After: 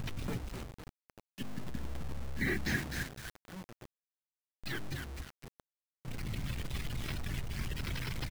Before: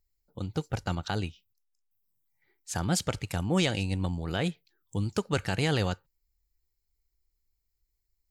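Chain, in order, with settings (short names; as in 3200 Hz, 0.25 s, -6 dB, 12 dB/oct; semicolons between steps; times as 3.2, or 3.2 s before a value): delta modulation 32 kbps, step -32.5 dBFS; graphic EQ 125/250/2000 Hz +12/+8/+4 dB; flipped gate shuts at -22 dBFS, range -42 dB; limiter -30.5 dBFS, peak gain reduction 10 dB; 1.15–3.78 small resonant body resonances 220/1700 Hz, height 12 dB, ringing for 20 ms; frequency-shifting echo 0.256 s, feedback 34%, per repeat -68 Hz, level -5.5 dB; spectral gate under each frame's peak -25 dB strong; notches 50/100/150/200/250/300 Hz; requantised 8-bit, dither none; lo-fi delay 0.27 s, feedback 55%, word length 6-bit, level -6.5 dB; gain +1.5 dB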